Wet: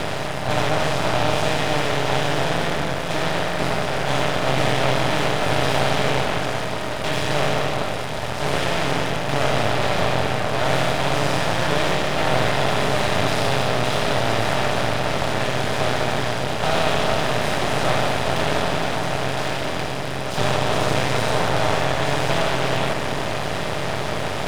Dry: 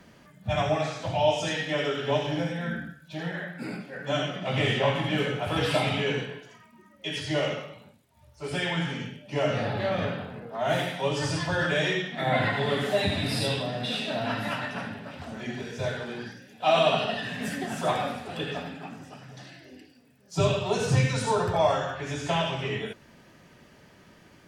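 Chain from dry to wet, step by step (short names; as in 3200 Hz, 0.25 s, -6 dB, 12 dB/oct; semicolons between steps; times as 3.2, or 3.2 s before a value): per-bin compression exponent 0.2; echo with dull and thin repeats by turns 0.421 s, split 1400 Hz, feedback 56%, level -8 dB; half-wave rectifier; gain -1.5 dB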